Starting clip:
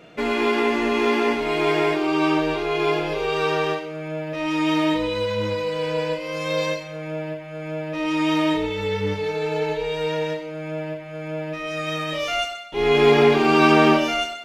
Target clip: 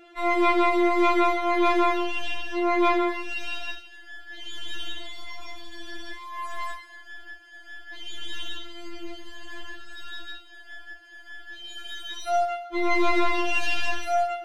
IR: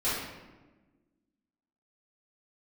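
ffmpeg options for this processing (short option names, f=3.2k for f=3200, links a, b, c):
-af "aeval=exprs='(tanh(6.31*val(0)+0.4)-tanh(0.4))/6.31':c=same,afftfilt=real='re*4*eq(mod(b,16),0)':imag='im*4*eq(mod(b,16),0)':win_size=2048:overlap=0.75"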